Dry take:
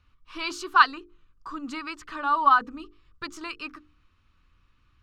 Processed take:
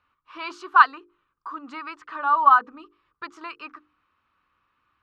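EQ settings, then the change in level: band-pass filter 990 Hz, Q 0.94; +4.0 dB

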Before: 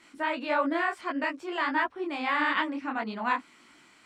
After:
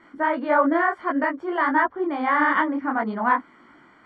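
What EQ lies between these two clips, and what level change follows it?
Savitzky-Golay filter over 41 samples; +8.0 dB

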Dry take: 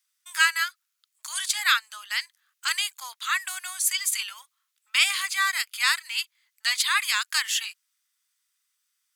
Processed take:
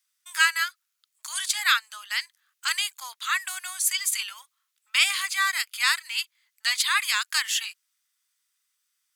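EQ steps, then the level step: hum notches 50/100/150/200/250/300/350/400 Hz; 0.0 dB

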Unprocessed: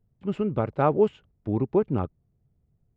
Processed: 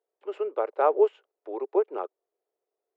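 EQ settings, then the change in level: steep high-pass 390 Hz 48 dB/octave; treble shelf 2.1 kHz -10 dB; +2.0 dB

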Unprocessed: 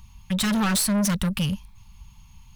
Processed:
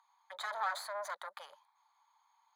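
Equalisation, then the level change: boxcar filter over 16 samples; steep high-pass 660 Hz 36 dB/octave; -3.0 dB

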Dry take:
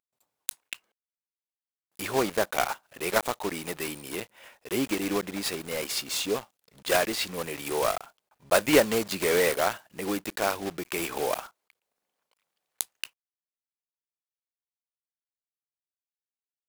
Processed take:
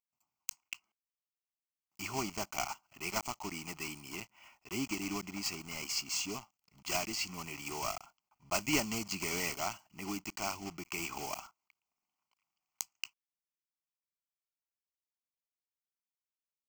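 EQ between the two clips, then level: dynamic bell 6.8 kHz, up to +4 dB, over -45 dBFS, Q 0.79; dynamic bell 1.2 kHz, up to -4 dB, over -35 dBFS, Q 0.88; static phaser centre 2.5 kHz, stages 8; -4.5 dB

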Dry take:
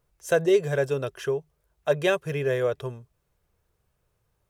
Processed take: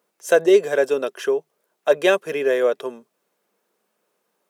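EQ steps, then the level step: elliptic high-pass 210 Hz, stop band 60 dB; +6.5 dB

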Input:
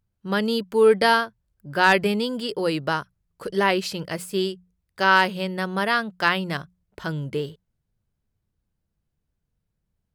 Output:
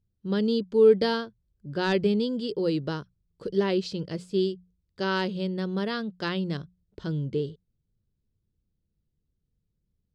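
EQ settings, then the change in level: distance through air 99 m; high-order bell 1.3 kHz -12.5 dB 2.4 oct; treble shelf 8.8 kHz -11 dB; 0.0 dB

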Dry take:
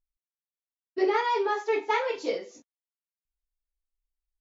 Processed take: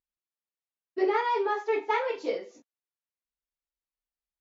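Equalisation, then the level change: high-pass 190 Hz 6 dB/octave; low-pass 2.7 kHz 6 dB/octave; 0.0 dB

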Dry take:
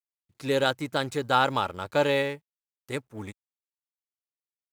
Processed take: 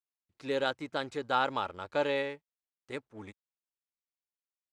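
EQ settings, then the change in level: distance through air 81 m; peaking EQ 130 Hz -8 dB 1.1 oct; -5.5 dB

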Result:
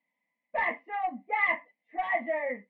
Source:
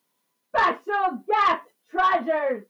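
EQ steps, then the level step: four-pole ladder low-pass 2.1 kHz, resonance 90%; static phaser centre 390 Hz, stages 6; band-stop 1.1 kHz, Q 11; +6.0 dB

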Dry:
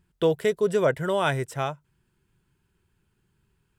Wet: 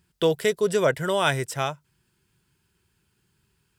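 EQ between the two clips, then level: high-pass 51 Hz; treble shelf 2.1 kHz +8 dB; peaking EQ 4.9 kHz +4 dB 0.33 oct; 0.0 dB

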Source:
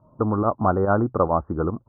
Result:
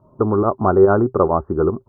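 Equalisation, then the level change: peaking EQ 390 Hz +13.5 dB 0.2 oct; +2.5 dB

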